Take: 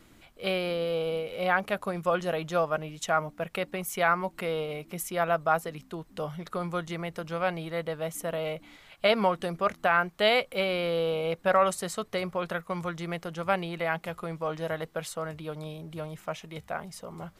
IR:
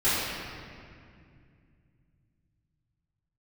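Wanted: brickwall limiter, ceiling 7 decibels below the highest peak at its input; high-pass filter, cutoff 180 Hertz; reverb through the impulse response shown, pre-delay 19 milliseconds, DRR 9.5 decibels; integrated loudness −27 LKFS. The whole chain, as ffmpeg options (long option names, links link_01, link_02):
-filter_complex "[0:a]highpass=180,alimiter=limit=-17dB:level=0:latency=1,asplit=2[link_01][link_02];[1:a]atrim=start_sample=2205,adelay=19[link_03];[link_02][link_03]afir=irnorm=-1:irlink=0,volume=-25dB[link_04];[link_01][link_04]amix=inputs=2:normalize=0,volume=4.5dB"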